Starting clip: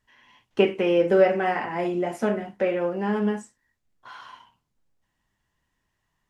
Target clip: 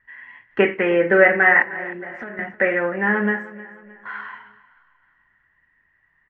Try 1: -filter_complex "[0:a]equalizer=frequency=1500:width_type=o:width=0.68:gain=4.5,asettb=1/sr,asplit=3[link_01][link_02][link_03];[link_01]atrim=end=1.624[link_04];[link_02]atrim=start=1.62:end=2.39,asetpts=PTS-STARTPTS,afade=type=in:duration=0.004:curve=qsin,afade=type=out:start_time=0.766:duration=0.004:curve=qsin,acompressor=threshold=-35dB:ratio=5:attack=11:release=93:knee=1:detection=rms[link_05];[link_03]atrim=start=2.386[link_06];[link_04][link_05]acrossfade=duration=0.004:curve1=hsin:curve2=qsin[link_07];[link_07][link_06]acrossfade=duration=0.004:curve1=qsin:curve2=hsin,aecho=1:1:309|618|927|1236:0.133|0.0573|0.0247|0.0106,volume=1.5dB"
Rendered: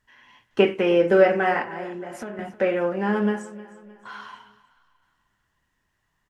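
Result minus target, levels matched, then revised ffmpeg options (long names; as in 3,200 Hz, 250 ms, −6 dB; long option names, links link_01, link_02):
2,000 Hz band −8.5 dB
-filter_complex "[0:a]lowpass=frequency=1900:width_type=q:width=6.7,equalizer=frequency=1500:width_type=o:width=0.68:gain=4.5,asettb=1/sr,asplit=3[link_01][link_02][link_03];[link_01]atrim=end=1.624[link_04];[link_02]atrim=start=1.62:end=2.39,asetpts=PTS-STARTPTS,afade=type=in:duration=0.004:curve=qsin,afade=type=out:start_time=0.766:duration=0.004:curve=qsin,acompressor=threshold=-35dB:ratio=5:attack=11:release=93:knee=1:detection=rms[link_05];[link_03]atrim=start=2.386[link_06];[link_04][link_05]acrossfade=duration=0.004:curve1=hsin:curve2=qsin[link_07];[link_07][link_06]acrossfade=duration=0.004:curve1=qsin:curve2=hsin,aecho=1:1:309|618|927|1236:0.133|0.0573|0.0247|0.0106,volume=1.5dB"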